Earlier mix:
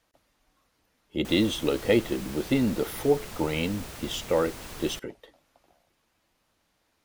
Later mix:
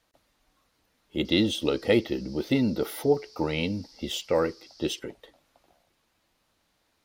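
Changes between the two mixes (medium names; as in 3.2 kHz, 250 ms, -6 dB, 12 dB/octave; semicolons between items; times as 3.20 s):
background: add Butterworth band-pass 5 kHz, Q 4.3; master: add peaking EQ 4 kHz +3 dB 0.49 oct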